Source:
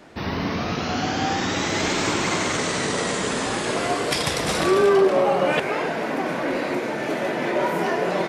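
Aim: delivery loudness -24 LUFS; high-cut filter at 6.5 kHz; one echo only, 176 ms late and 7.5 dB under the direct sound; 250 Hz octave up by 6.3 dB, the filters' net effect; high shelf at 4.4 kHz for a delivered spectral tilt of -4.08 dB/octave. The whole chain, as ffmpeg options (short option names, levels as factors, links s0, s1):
-af "lowpass=6500,equalizer=f=250:t=o:g=8.5,highshelf=f=4400:g=9,aecho=1:1:176:0.422,volume=0.531"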